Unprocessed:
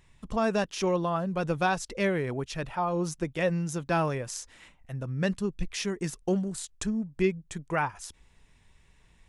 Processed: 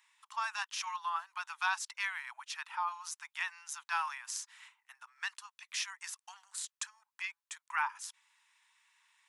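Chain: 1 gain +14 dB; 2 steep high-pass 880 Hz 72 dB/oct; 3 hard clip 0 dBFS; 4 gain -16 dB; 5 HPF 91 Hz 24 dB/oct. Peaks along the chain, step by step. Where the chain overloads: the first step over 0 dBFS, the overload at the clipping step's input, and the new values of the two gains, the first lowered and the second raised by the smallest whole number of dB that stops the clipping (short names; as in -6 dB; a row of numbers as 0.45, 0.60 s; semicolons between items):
-0.5, -3.0, -3.0, -19.0, -19.0 dBFS; no overload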